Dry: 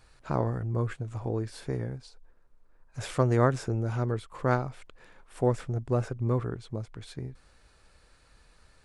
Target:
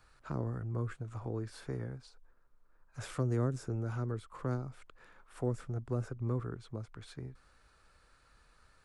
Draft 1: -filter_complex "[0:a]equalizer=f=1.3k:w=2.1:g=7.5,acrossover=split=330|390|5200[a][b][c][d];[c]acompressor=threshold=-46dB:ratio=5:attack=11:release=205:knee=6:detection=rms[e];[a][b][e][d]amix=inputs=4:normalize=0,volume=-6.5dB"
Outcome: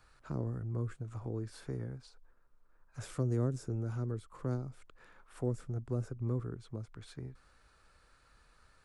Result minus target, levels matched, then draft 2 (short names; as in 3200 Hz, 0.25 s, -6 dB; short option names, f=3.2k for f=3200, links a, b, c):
compressor: peak gain reduction +6.5 dB
-filter_complex "[0:a]equalizer=f=1.3k:w=2.1:g=7.5,acrossover=split=330|390|5200[a][b][c][d];[c]acompressor=threshold=-38dB:ratio=5:attack=11:release=205:knee=6:detection=rms[e];[a][b][e][d]amix=inputs=4:normalize=0,volume=-6.5dB"